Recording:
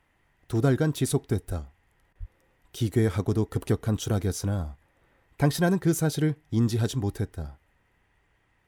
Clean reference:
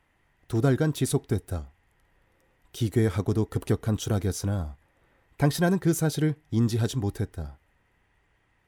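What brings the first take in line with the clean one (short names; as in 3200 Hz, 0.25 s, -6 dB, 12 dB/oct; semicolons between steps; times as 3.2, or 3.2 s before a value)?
de-plosive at 1.47/2.19; interpolate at 2.13, 22 ms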